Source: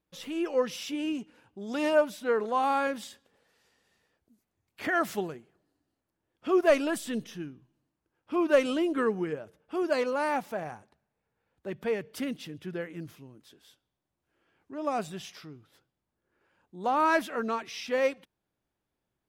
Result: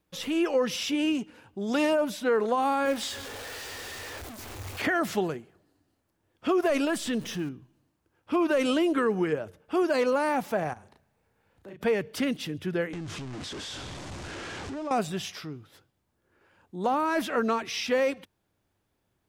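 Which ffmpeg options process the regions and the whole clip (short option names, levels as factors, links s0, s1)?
-filter_complex "[0:a]asettb=1/sr,asplit=3[s0][s1][s2];[s0]atrim=end=2.854[s3];[s1]atrim=start=2.85:end=4.82,asetpts=PTS-STARTPTS,afade=t=in:d=0.004:c=qsin,afade=t=out:st=1.966:d=0.004:c=qsin,aeval=exprs='val(0)+0.5*0.00891*sgn(val(0))':c=same,equalizer=f=180:t=o:w=0.58:g=-14.5,asplit=2[s4][s5];[s5]adelay=22,volume=0.251[s6];[s4][s6]amix=inputs=2:normalize=0,atrim=end_sample=86877[s7];[s2]atrim=start=4.816[s8];[s3][s7]acrossfade=d=0.004:c1=hsin:c2=qsin[s9];[s9][s8]acrossfade=d=0.004:c1=qsin:c2=hsin,asettb=1/sr,asplit=3[s10][s11][s12];[s10]atrim=end=6.854[s13];[s11]atrim=start=6.85:end=7.49,asetpts=PTS-STARTPTS,afade=t=in:d=0.004:c=qsin,afade=t=out:st=0.636:d=0.004:c=qsin,aeval=exprs='val(0)+0.5*0.00398*sgn(val(0))':c=same,acompressor=threshold=0.0141:ratio=1.5:attack=3.2:release=140:knee=1:detection=peak[s14];[s12]atrim=start=7.486[s15];[s13][s14]acrossfade=d=0.004:c1=hsin:c2=qsin[s16];[s16][s15]acrossfade=d=0.004:c1=qsin:c2=hsin,asettb=1/sr,asplit=3[s17][s18][s19];[s17]atrim=end=10.734[s20];[s18]atrim=start=10.73:end=11.81,asetpts=PTS-STARTPTS,afade=t=in:d=0.004:c=qsin,afade=t=out:st=1.076:d=0.004:c=qsin,acompressor=threshold=0.00126:ratio=2.5:attack=3.2:release=140:knee=1:detection=peak,asplit=2[s21][s22];[s22]adelay=35,volume=0.708[s23];[s21][s23]amix=inputs=2:normalize=0,atrim=end_sample=47628[s24];[s19]atrim=start=11.806[s25];[s20][s24]acrossfade=d=0.004:c1=hsin:c2=qsin[s26];[s26][s25]acrossfade=d=0.004:c1=qsin:c2=hsin,asettb=1/sr,asplit=3[s27][s28][s29];[s27]atrim=end=12.934[s30];[s28]atrim=start=12.93:end=14.91,asetpts=PTS-STARTPTS,afade=t=in:d=0.004:c=qsin,afade=t=out:st=1.976:d=0.004:c=qsin,aeval=exprs='val(0)+0.5*0.01*sgn(val(0))':c=same,lowpass=f=7900:w=0.5412,lowpass=f=7900:w=1.3066,acompressor=threshold=0.00708:ratio=3:attack=3.2:release=140:knee=1:detection=peak[s31];[s29]atrim=start=14.906[s32];[s30][s31]acrossfade=d=0.004:c1=hsin:c2=qsin[s33];[s33][s32]acrossfade=d=0.004:c1=qsin:c2=hsin,equalizer=f=94:w=6.5:g=9,alimiter=limit=0.0841:level=0:latency=1:release=31,acrossover=split=460|7500[s34][s35][s36];[s34]acompressor=threshold=0.02:ratio=4[s37];[s35]acompressor=threshold=0.0224:ratio=4[s38];[s36]acompressor=threshold=0.002:ratio=4[s39];[s37][s38][s39]amix=inputs=3:normalize=0,volume=2.37"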